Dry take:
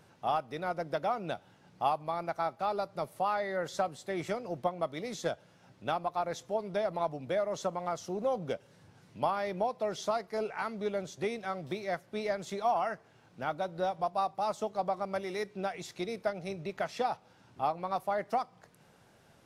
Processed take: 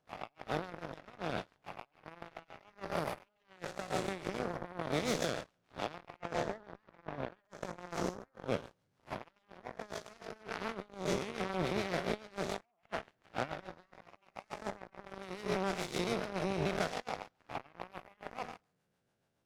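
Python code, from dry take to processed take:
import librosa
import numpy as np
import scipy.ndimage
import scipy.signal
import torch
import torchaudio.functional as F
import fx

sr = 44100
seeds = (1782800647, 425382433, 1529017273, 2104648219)

y = fx.spec_blur(x, sr, span_ms=252.0)
y = fx.high_shelf(y, sr, hz=4900.0, db=-11.5, at=(6.16, 7.45))
y = fx.over_compress(y, sr, threshold_db=-42.0, ratio=-0.5)
y = fx.rotary(y, sr, hz=7.0)
y = fx.cheby_harmonics(y, sr, harmonics=(3, 5, 7), levels_db=(-44, -37, -16), full_scale_db=-28.5)
y = y * 10.0 ** (8.5 / 20.0)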